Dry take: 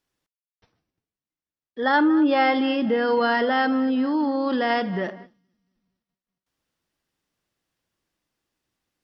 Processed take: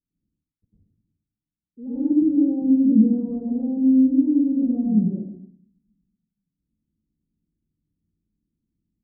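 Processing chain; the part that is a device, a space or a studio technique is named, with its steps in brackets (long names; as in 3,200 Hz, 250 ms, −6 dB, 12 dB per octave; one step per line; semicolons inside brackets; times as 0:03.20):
0:02.12–0:02.52: high-pass filter 200 Hz 6 dB per octave
next room (low-pass filter 270 Hz 24 dB per octave; convolution reverb RT60 0.50 s, pre-delay 96 ms, DRR −9.5 dB)
high-frequency loss of the air 450 metres
slap from a distant wall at 18 metres, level −15 dB
level −2 dB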